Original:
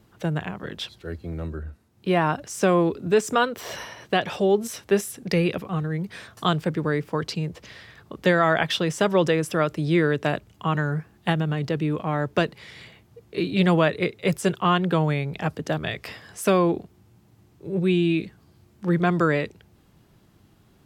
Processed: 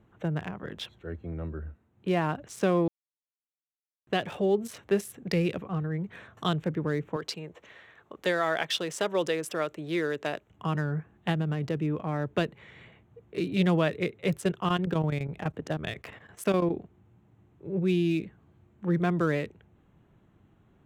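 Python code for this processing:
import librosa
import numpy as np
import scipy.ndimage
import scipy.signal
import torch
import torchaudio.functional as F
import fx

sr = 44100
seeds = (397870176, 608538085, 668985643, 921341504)

y = fx.bass_treble(x, sr, bass_db=-14, treble_db=4, at=(7.16, 10.5))
y = fx.chopper(y, sr, hz=12.0, depth_pct=65, duty_pct=80, at=(14.37, 16.74))
y = fx.edit(y, sr, fx.silence(start_s=2.88, length_s=1.19), tone=tone)
y = fx.wiener(y, sr, points=9)
y = fx.dynamic_eq(y, sr, hz=1100.0, q=0.73, threshold_db=-32.0, ratio=4.0, max_db=-4)
y = y * librosa.db_to_amplitude(-4.0)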